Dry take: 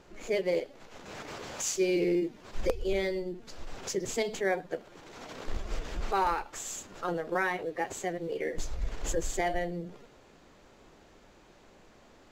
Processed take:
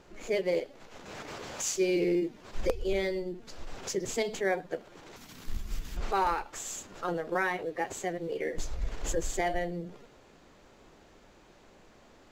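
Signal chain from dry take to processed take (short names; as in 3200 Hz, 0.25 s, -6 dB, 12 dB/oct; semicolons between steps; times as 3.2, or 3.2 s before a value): 5.16–5.97 EQ curve 210 Hz 0 dB, 550 Hz -17 dB, 880 Hz -10 dB, 7200 Hz +1 dB, 14000 Hz +14 dB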